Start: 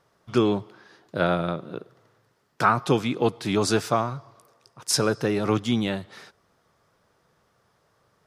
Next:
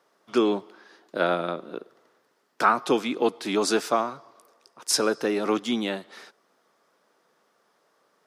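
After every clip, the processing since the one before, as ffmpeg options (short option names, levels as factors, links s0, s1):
-af "highpass=f=230:w=0.5412,highpass=f=230:w=1.3066"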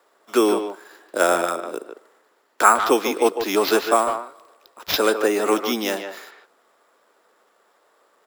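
-filter_complex "[0:a]acrossover=split=260 5400:gain=0.0891 1 0.224[s0][s1][s2];[s0][s1][s2]amix=inputs=3:normalize=0,acrusher=samples=5:mix=1:aa=0.000001,asplit=2[s3][s4];[s4]adelay=150,highpass=300,lowpass=3400,asoftclip=type=hard:threshold=0.168,volume=0.447[s5];[s3][s5]amix=inputs=2:normalize=0,volume=2"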